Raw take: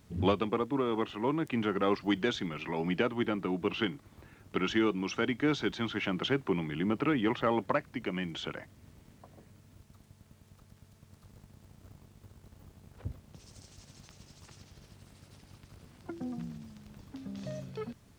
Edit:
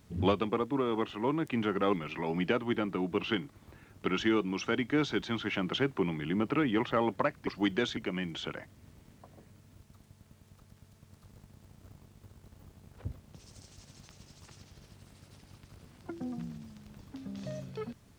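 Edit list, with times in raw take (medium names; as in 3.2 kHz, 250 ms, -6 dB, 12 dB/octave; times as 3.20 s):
1.93–2.43 s: move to 7.97 s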